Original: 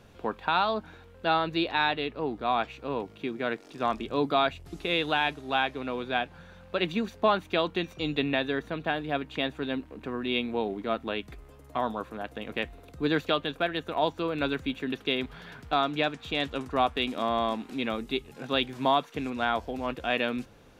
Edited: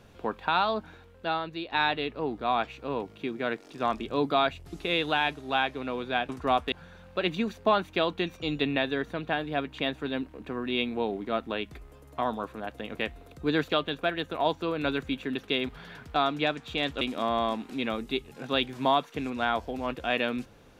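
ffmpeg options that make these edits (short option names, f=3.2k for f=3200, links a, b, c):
-filter_complex "[0:a]asplit=5[a][b][c][d][e];[a]atrim=end=1.72,asetpts=PTS-STARTPTS,afade=t=out:st=0.83:d=0.89:silence=0.281838[f];[b]atrim=start=1.72:end=6.292,asetpts=PTS-STARTPTS,afade=t=in:d=0.004:c=hsin:silence=0.281838[g];[c]atrim=start=16.578:end=17.012[h];[d]atrim=start=6.288:end=16.582[i];[e]atrim=start=17.008[j];[f][g]concat=n=2:v=0:a=1[k];[k][h]acrossfade=d=0.004:c1=hsin:c2=hsin[l];[l][i]acrossfade=d=0.004:c1=hsin:c2=hsin[m];[m][j]acrossfade=d=0.004:c1=hsin:c2=hsin"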